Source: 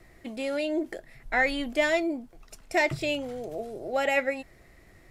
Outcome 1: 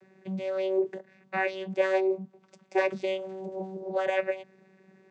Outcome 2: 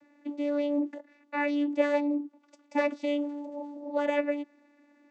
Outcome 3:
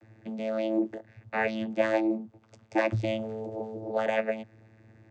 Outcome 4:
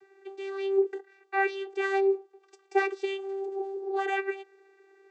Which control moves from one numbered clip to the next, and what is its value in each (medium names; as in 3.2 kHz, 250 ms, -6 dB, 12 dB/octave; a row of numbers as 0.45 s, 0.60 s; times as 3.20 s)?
vocoder, frequency: 190 Hz, 290 Hz, 110 Hz, 390 Hz